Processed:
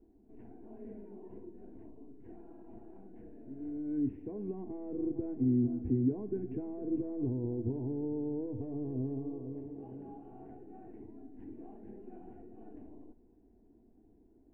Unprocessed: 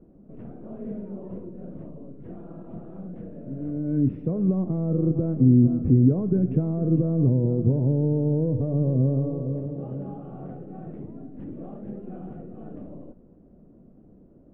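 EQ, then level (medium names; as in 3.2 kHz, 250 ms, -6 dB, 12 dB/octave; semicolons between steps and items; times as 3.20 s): static phaser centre 830 Hz, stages 8; -7.5 dB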